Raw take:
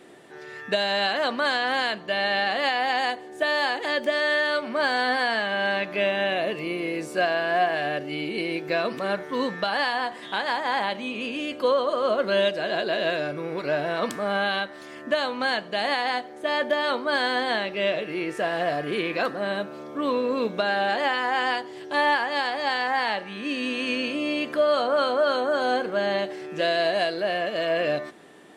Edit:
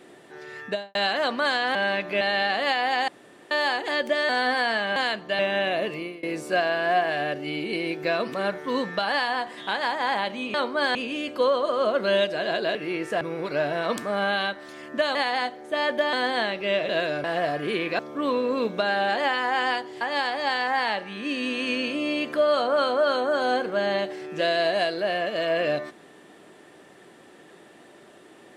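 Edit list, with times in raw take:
0:00.62–0:00.95: fade out and dull
0:01.75–0:02.18: swap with 0:05.58–0:06.04
0:03.05–0:03.48: fill with room tone
0:04.26–0:04.91: remove
0:06.57–0:06.88: fade out, to −23.5 dB
0:12.99–0:13.34: swap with 0:18.02–0:18.48
0:15.28–0:15.87: remove
0:16.85–0:17.26: move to 0:11.19
0:19.23–0:19.79: remove
0:21.81–0:22.21: remove

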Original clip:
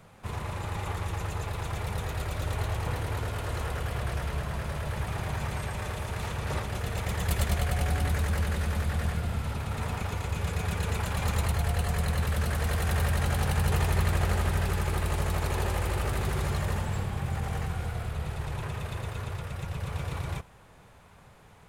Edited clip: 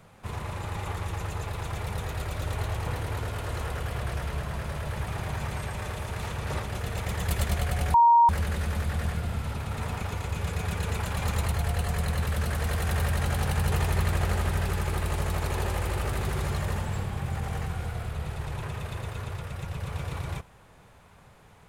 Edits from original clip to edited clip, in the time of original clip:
0:07.94–0:08.29: beep over 938 Hz −14 dBFS

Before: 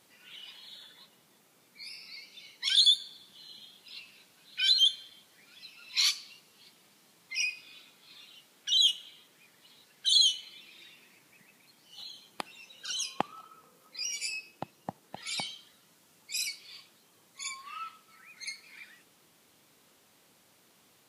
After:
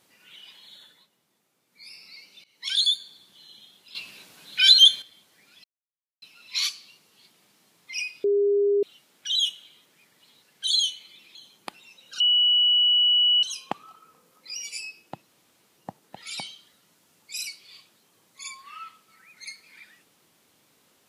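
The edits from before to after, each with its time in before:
0:00.84–0:01.91: duck −8.5 dB, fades 0.24 s
0:02.44–0:02.71: fade in, from −21 dB
0:03.95–0:05.02: clip gain +10 dB
0:05.64: splice in silence 0.58 s
0:07.66–0:08.25: beep over 405 Hz −18 dBFS
0:10.77–0:12.07: remove
0:12.92: insert tone 2,940 Hz −16.5 dBFS 1.23 s
0:14.77: splice in room tone 0.49 s

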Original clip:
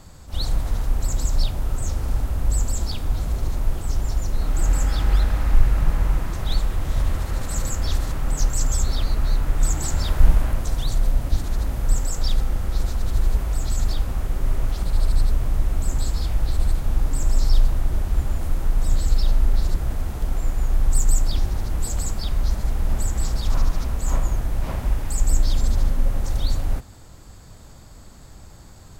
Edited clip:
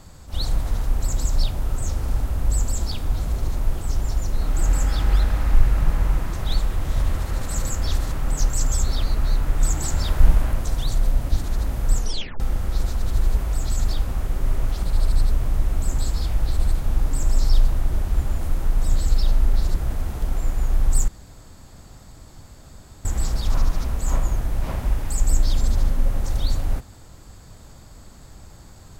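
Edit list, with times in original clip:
0:11.97: tape stop 0.43 s
0:21.08–0:23.05: fill with room tone

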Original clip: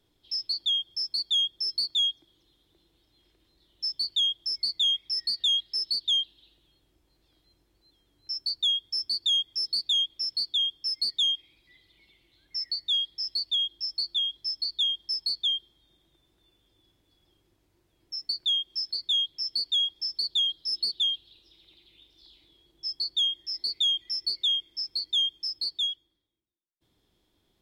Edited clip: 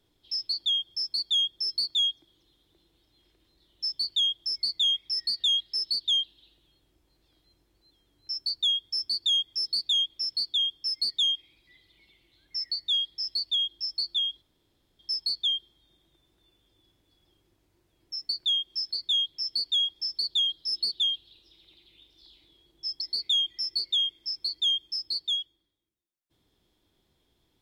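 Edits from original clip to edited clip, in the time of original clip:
0:14.42–0:14.99: fill with room tone
0:23.01–0:23.52: remove

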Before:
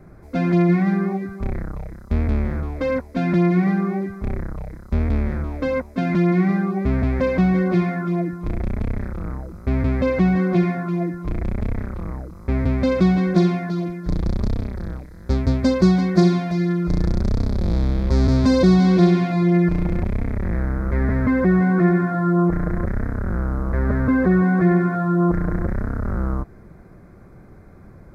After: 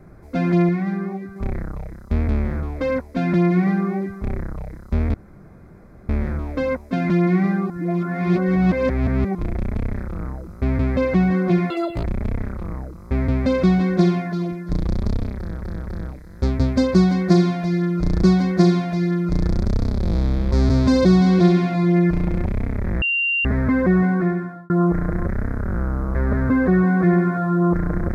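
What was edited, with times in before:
0:00.69–0:01.36: clip gain −4.5 dB
0:05.14: splice in room tone 0.95 s
0:06.75–0:08.40: reverse
0:10.75–0:11.41: play speed 195%
0:14.74–0:14.99: repeat, 3 plays
0:15.82–0:17.11: repeat, 2 plays
0:20.60–0:21.03: beep over 2,770 Hz −17.5 dBFS
0:21.59–0:22.28: fade out

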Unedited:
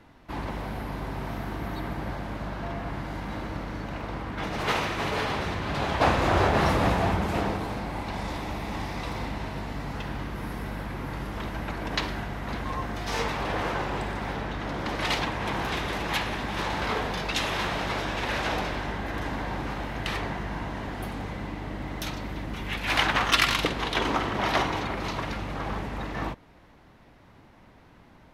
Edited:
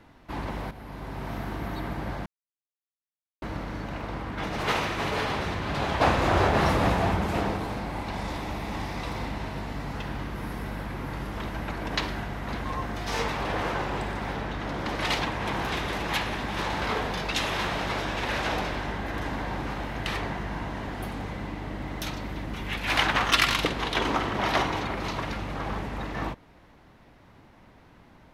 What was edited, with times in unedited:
0:00.71–0:01.36: fade in, from −12 dB
0:02.26–0:03.42: silence

